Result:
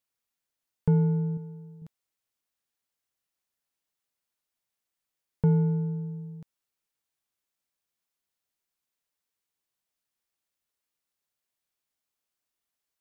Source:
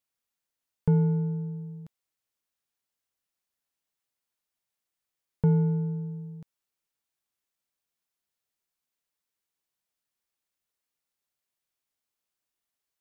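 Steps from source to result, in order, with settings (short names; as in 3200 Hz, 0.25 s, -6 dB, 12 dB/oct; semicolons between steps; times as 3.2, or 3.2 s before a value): 1.37–1.82 low shelf 260 Hz -9.5 dB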